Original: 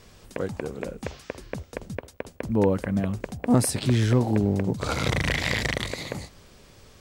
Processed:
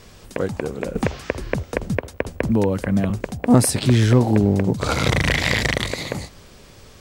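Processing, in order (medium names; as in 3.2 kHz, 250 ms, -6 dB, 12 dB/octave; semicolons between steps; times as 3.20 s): 0.95–3.10 s: three bands compressed up and down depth 100%; trim +6 dB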